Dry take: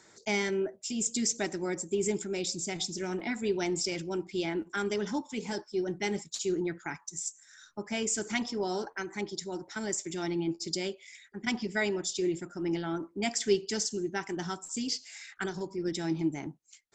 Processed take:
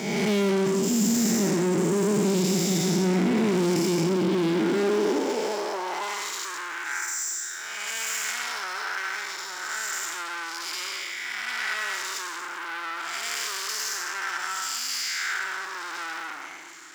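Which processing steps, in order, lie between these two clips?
spectral blur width 384 ms; feedback echo behind a low-pass 264 ms, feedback 67%, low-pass 540 Hz, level -15 dB; waveshaping leveller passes 5; high-pass sweep 180 Hz -> 1.4 kHz, 4.48–6.42 s

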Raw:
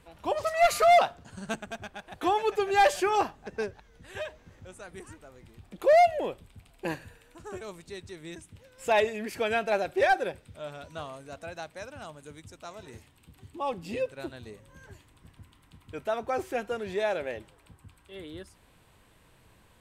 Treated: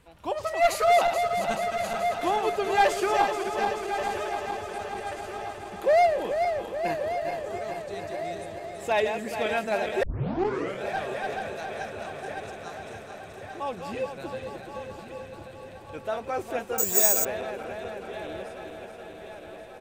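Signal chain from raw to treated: backward echo that repeats 215 ms, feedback 83%, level -7 dB; feedback delay 1132 ms, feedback 57%, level -11 dB; 10.03 s: tape start 0.80 s; 16.78–17.25 s: careless resampling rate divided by 6×, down none, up zero stuff; trim -1 dB

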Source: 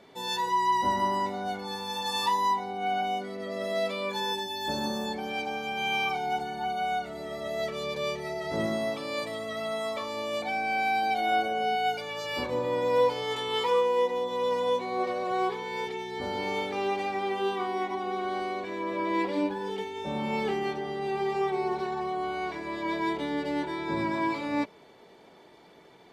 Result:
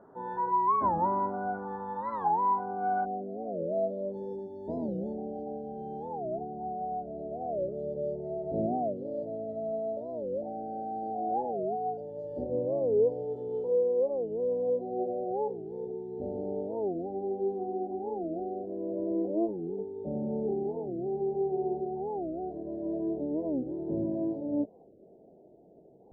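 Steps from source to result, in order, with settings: elliptic low-pass 1.5 kHz, stop band 40 dB, from 3.04 s 690 Hz; warped record 45 rpm, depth 250 cents

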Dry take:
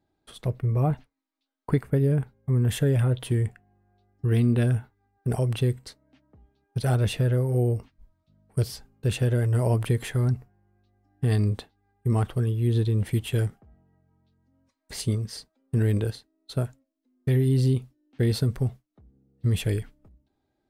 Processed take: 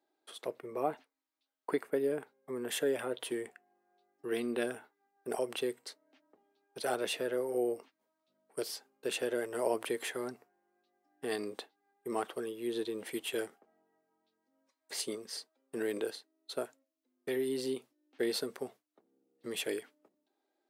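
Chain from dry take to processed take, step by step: high-pass 330 Hz 24 dB/octave; trim -2.5 dB

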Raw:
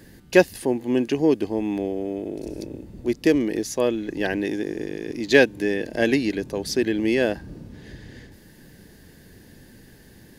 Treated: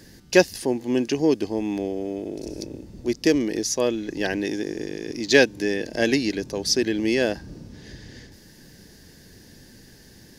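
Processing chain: peaking EQ 5.5 kHz +10.5 dB 0.83 oct; trim -1 dB

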